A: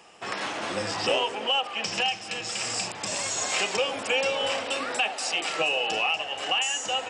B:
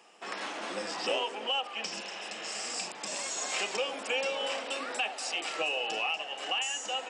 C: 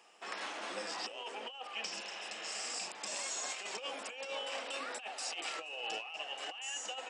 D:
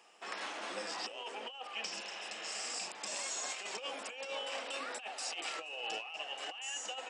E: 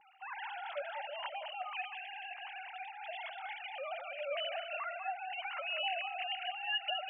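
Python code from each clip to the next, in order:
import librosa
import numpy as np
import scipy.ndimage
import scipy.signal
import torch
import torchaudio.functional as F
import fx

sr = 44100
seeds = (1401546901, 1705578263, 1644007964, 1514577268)

y1 = scipy.signal.sosfilt(scipy.signal.butter(4, 200.0, 'highpass', fs=sr, output='sos'), x)
y1 = fx.spec_repair(y1, sr, seeds[0], start_s=1.99, length_s=0.62, low_hz=350.0, high_hz=4100.0, source='both')
y1 = y1 * 10.0 ** (-6.0 / 20.0)
y2 = fx.low_shelf(y1, sr, hz=330.0, db=-8.0)
y2 = fx.over_compress(y2, sr, threshold_db=-35.0, ratio=-0.5)
y2 = y2 * 10.0 ** (-5.0 / 20.0)
y3 = y2
y4 = fx.sine_speech(y3, sr)
y4 = y4 + 10.0 ** (-10.0 / 20.0) * np.pad(y4, (int(195 * sr / 1000.0), 0))[:len(y4)]
y4 = y4 * 10.0 ** (1.0 / 20.0)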